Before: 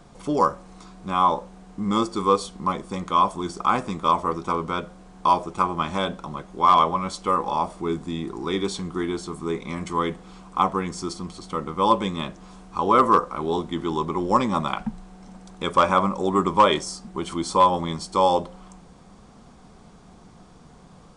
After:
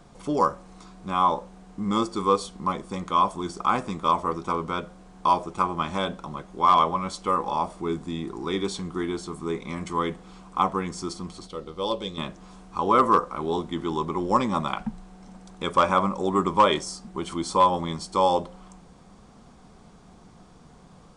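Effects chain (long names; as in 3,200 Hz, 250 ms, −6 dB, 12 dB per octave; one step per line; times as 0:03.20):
0:11.47–0:12.18: octave-band graphic EQ 125/250/500/1,000/2,000/4,000/8,000 Hz −7/−8/+3/−11/−8/+7/−6 dB
level −2 dB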